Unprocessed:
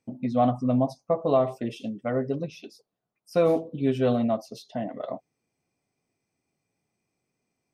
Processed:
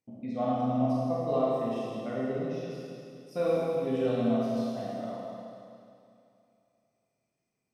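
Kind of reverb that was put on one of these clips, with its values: Schroeder reverb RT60 2.6 s, combs from 27 ms, DRR -7 dB; gain -11.5 dB

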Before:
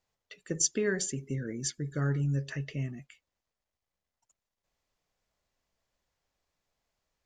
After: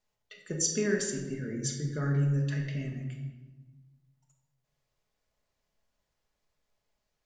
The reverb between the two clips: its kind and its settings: shoebox room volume 730 m³, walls mixed, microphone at 1.4 m; gain -2.5 dB

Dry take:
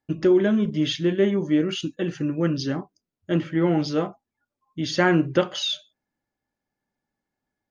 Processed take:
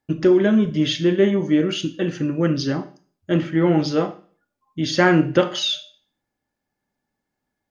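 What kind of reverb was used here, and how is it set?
Schroeder reverb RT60 0.44 s, combs from 25 ms, DRR 11.5 dB; gain +3.5 dB

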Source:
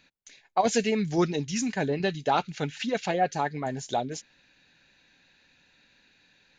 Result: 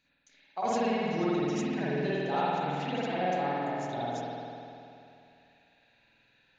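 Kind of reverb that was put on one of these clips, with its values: spring tank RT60 2.7 s, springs 49 ms, chirp 35 ms, DRR -9.5 dB; gain -13 dB

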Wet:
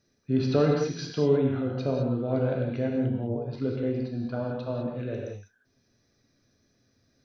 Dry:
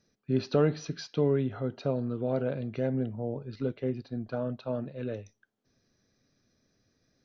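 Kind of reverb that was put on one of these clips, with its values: non-linear reverb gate 0.23 s flat, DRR -0.5 dB

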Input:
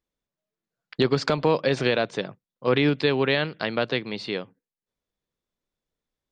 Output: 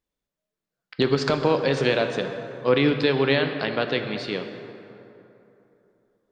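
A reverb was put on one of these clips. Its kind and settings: plate-style reverb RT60 3.1 s, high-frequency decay 0.5×, DRR 6 dB

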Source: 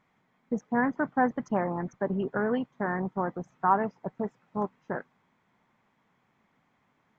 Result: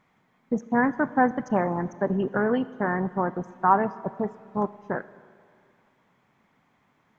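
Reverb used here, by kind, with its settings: Schroeder reverb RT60 2.2 s, combs from 27 ms, DRR 16.5 dB; gain +4 dB

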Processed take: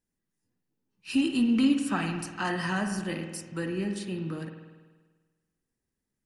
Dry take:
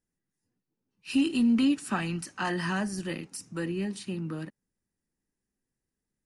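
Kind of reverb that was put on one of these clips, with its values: spring tank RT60 1.4 s, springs 49 ms, chirp 65 ms, DRR 5.5 dB

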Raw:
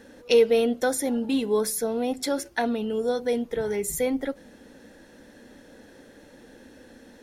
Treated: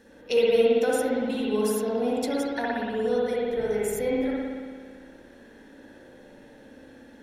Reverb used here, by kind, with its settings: spring tank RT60 1.8 s, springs 57 ms, chirp 55 ms, DRR -5.5 dB; gain -6.5 dB

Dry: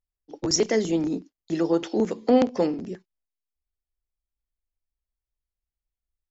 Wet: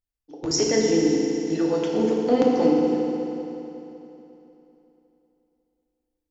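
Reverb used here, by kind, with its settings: FDN reverb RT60 3.2 s, high-frequency decay 0.9×, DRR -2.5 dB; gain -3 dB

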